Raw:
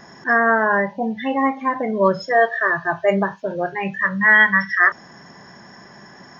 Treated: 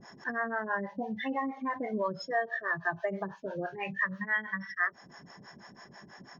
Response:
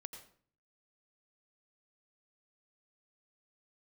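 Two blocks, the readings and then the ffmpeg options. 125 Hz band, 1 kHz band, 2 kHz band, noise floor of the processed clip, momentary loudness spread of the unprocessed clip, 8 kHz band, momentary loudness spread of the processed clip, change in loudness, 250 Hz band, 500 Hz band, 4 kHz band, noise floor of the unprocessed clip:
−13.5 dB, −14.5 dB, −16.0 dB, −55 dBFS, 11 LU, can't be measured, 20 LU, −15.5 dB, −13.5 dB, −15.5 dB, −12.5 dB, −44 dBFS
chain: -filter_complex "[0:a]acompressor=threshold=-20dB:ratio=6,acrossover=split=460[link_01][link_02];[link_01]aeval=exprs='val(0)*(1-1/2+1/2*cos(2*PI*6.1*n/s))':channel_layout=same[link_03];[link_02]aeval=exprs='val(0)*(1-1/2-1/2*cos(2*PI*6.1*n/s))':channel_layout=same[link_04];[link_03][link_04]amix=inputs=2:normalize=0,volume=-4dB"

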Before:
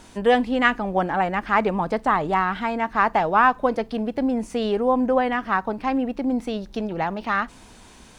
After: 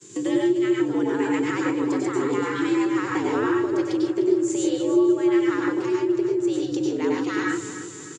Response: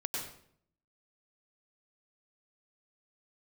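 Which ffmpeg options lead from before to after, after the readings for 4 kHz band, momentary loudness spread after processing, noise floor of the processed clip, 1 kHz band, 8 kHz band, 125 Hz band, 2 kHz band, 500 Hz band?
−2.0 dB, 5 LU, −38 dBFS, −11.0 dB, can't be measured, −2.5 dB, −6.0 dB, +1.0 dB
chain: -filter_complex "[0:a]agate=range=-33dB:threshold=-38dB:ratio=3:detection=peak,lowpass=frequency=7100:width_type=q:width=11,lowshelf=frequency=410:width_type=q:width=3:gain=11.5,acrossover=split=370[link_01][link_02];[link_02]acompressor=threshold=-21dB:ratio=6[link_03];[link_01][link_03]amix=inputs=2:normalize=0,alimiter=limit=-4dB:level=0:latency=1:release=261,acompressor=threshold=-31dB:ratio=2.5,tiltshelf=frequency=1100:gain=-5,afreqshift=100,aecho=1:1:302|604|906|1208|1510:0.237|0.111|0.0524|0.0246|0.0116[link_04];[1:a]atrim=start_sample=2205,afade=type=out:start_time=0.21:duration=0.01,atrim=end_sample=9702[link_05];[link_04][link_05]afir=irnorm=-1:irlink=0,volume=5dB"

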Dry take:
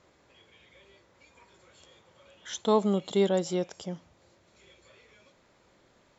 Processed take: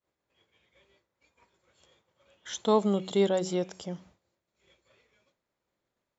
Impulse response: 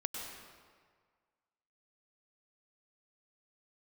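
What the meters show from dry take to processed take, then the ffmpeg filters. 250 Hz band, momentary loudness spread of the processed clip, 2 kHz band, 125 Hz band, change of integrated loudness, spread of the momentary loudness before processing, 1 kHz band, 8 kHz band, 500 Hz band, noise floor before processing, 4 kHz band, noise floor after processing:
−0.5 dB, 15 LU, −0.5 dB, −0.5 dB, 0.0 dB, 15 LU, 0.0 dB, can't be measured, 0.0 dB, −64 dBFS, 0.0 dB, below −85 dBFS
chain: -af "bandreject=frequency=93.62:width_type=h:width=4,bandreject=frequency=187.24:width_type=h:width=4,bandreject=frequency=280.86:width_type=h:width=4,bandreject=frequency=374.48:width_type=h:width=4,agate=range=-33dB:threshold=-50dB:ratio=3:detection=peak"

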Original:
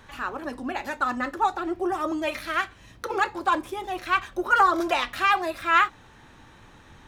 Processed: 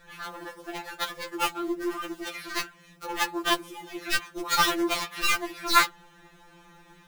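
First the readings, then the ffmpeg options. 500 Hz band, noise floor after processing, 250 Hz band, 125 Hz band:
−4.5 dB, −56 dBFS, −2.0 dB, −1.5 dB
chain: -af "acrusher=bits=4:mode=log:mix=0:aa=0.000001,aeval=exprs='0.422*(cos(1*acos(clip(val(0)/0.422,-1,1)))-cos(1*PI/2))+0.00596*(cos(2*acos(clip(val(0)/0.422,-1,1)))-cos(2*PI/2))+0.119*(cos(7*acos(clip(val(0)/0.422,-1,1)))-cos(7*PI/2))':channel_layout=same,afftfilt=real='re*2.83*eq(mod(b,8),0)':imag='im*2.83*eq(mod(b,8),0)':win_size=2048:overlap=0.75"

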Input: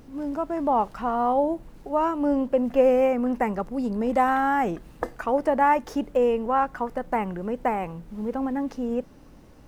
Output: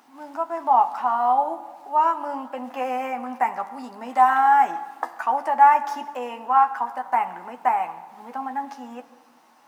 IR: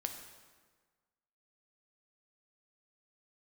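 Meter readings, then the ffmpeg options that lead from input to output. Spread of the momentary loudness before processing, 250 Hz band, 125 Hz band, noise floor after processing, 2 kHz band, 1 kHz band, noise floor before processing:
10 LU, −12.0 dB, below −15 dB, −55 dBFS, +2.5 dB, +6.5 dB, −49 dBFS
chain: -filter_complex "[0:a]highpass=frequency=240:width=0.5412,highpass=frequency=240:width=1.3066,lowshelf=frequency=630:width_type=q:width=3:gain=-9,asplit=2[link_01][link_02];[1:a]atrim=start_sample=2205,adelay=12[link_03];[link_02][link_03]afir=irnorm=-1:irlink=0,volume=-5.5dB[link_04];[link_01][link_04]amix=inputs=2:normalize=0"

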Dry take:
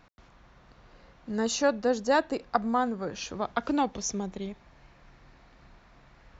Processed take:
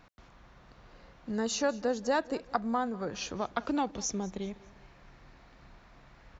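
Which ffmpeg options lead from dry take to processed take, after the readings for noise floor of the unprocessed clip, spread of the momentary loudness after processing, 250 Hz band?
−58 dBFS, 9 LU, −3.5 dB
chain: -af "acompressor=threshold=-33dB:ratio=1.5,aecho=1:1:199|398|597:0.0891|0.0357|0.0143"

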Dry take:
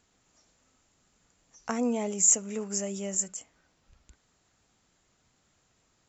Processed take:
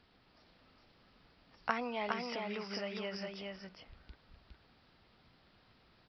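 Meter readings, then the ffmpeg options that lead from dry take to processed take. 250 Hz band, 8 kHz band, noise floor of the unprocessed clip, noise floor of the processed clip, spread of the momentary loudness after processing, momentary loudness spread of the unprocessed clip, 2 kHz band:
−10.5 dB, can't be measured, −71 dBFS, −68 dBFS, 18 LU, 14 LU, +5.0 dB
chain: -filter_complex "[0:a]acrossover=split=830[link_01][link_02];[link_01]acompressor=threshold=-47dB:ratio=6[link_03];[link_03][link_02]amix=inputs=2:normalize=0,aresample=11025,aresample=44100,aecho=1:1:411:0.668,volume=3.5dB"

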